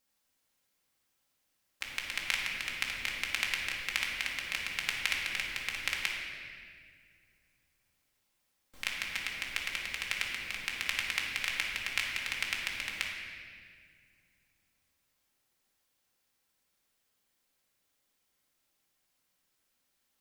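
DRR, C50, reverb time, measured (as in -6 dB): -2.5 dB, 1.5 dB, 2.0 s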